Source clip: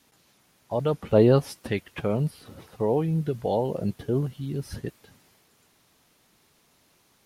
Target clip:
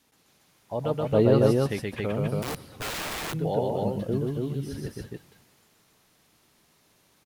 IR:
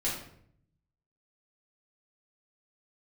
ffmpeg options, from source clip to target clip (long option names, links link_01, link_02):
-filter_complex "[0:a]aecho=1:1:125.4|277:0.794|0.794,asettb=1/sr,asplit=3[link_01][link_02][link_03];[link_01]atrim=end=2.424[link_04];[link_02]atrim=start=2.42:end=3.34,asetpts=PTS-STARTPTS,afade=type=in:duration=0.004:curve=qsin,afade=type=out:start_time=0.916:duration=0.004:curve=qsin,aeval=exprs='(mod(16.8*val(0)+1,2)-1)/16.8':channel_layout=same[link_05];[link_03]atrim=start=3.336[link_06];[link_04][link_05]acrossfade=duration=0.004:curve1=hsin:curve2=qsin[link_07];[link_07][link_06]acrossfade=duration=0.004:curve1=qsin:curve2=hsin,asplit=2[link_08][link_09];[1:a]atrim=start_sample=2205,asetrate=43659,aresample=44100[link_10];[link_09][link_10]afir=irnorm=-1:irlink=0,volume=-29dB[link_11];[link_08][link_11]amix=inputs=2:normalize=0,volume=-4dB"